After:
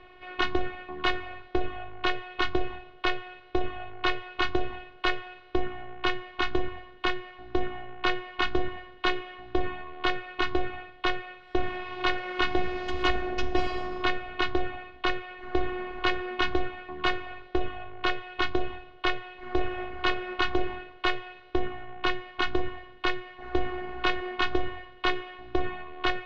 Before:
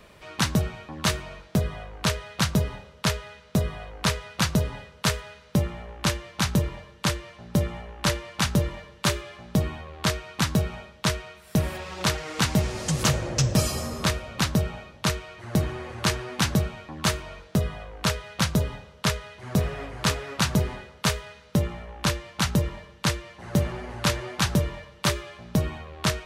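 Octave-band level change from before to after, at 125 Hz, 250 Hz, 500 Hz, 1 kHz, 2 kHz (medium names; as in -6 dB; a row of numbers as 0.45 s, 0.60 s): -17.5 dB, -5.5 dB, +0.5 dB, +2.0 dB, +1.5 dB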